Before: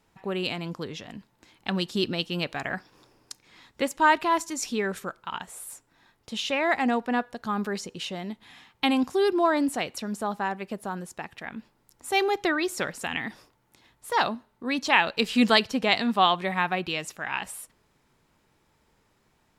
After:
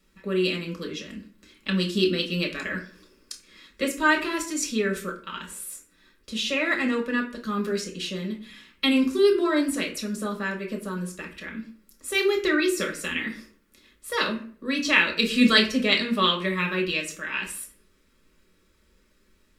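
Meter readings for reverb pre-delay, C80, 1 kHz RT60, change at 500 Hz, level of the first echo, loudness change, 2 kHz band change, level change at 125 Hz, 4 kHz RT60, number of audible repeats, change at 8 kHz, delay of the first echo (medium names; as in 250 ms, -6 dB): 5 ms, 15.0 dB, 0.45 s, +2.0 dB, no echo, +1.5 dB, +3.0 dB, +3.0 dB, 0.30 s, no echo, +3.5 dB, no echo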